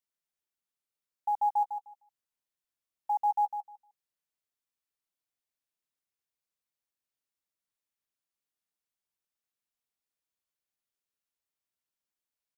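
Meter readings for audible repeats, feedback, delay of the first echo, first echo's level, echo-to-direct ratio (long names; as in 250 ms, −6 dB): 2, 18%, 153 ms, −8.0 dB, −8.0 dB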